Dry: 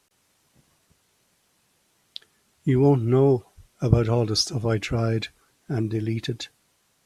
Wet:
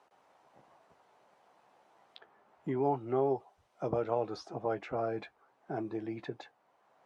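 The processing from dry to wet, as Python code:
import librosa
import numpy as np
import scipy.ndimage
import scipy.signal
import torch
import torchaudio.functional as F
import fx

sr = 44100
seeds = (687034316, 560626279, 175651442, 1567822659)

y = fx.bandpass_q(x, sr, hz=770.0, q=2.2)
y = fx.doubler(y, sr, ms=15.0, db=-12.0)
y = fx.band_squash(y, sr, depth_pct=40)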